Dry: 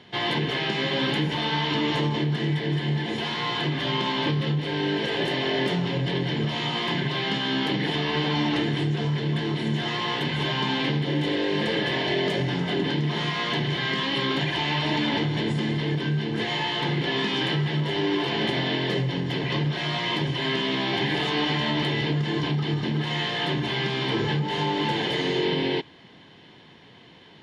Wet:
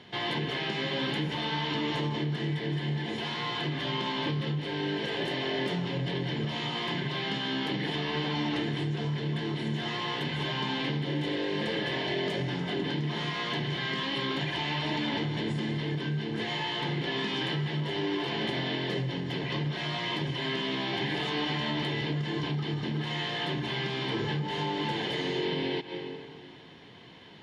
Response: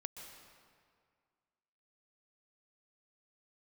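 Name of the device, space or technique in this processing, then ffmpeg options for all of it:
ducked reverb: -filter_complex "[0:a]asplit=3[s0][s1][s2];[1:a]atrim=start_sample=2205[s3];[s1][s3]afir=irnorm=-1:irlink=0[s4];[s2]apad=whole_len=1209240[s5];[s4][s5]sidechaincompress=threshold=0.0126:ratio=8:attack=16:release=129,volume=1.78[s6];[s0][s6]amix=inputs=2:normalize=0,volume=0.422"

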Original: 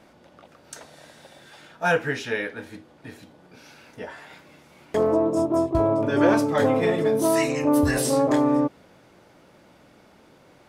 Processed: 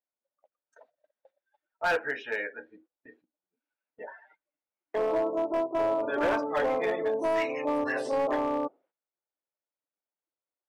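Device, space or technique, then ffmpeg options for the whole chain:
walkie-talkie: -af "afftdn=nr=26:nf=-36,highpass=510,lowpass=2700,asoftclip=type=hard:threshold=0.106,agate=range=0.158:threshold=0.00126:ratio=16:detection=peak,volume=0.794"

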